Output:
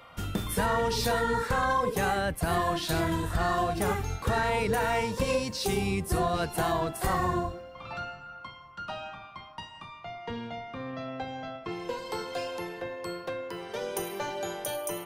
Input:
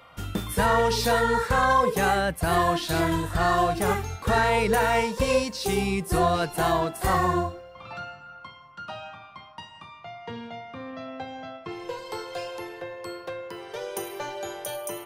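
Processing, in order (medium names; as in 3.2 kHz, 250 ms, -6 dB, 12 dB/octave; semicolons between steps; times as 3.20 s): octave divider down 1 oct, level -5 dB; compression 2.5:1, threshold -26 dBFS, peak gain reduction 7 dB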